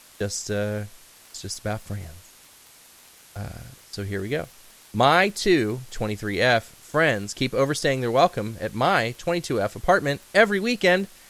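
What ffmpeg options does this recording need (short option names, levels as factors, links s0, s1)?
-af "adeclick=t=4,afftdn=nr=16:nf=-51"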